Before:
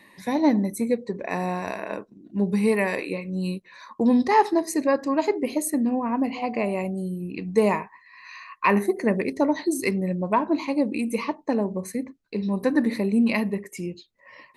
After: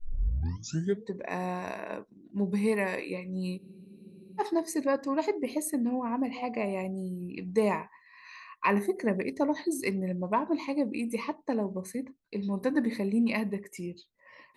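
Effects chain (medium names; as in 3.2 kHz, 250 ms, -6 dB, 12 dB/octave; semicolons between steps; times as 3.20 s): tape start-up on the opening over 1.11 s; spectral freeze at 3.61 s, 0.78 s; trim -6 dB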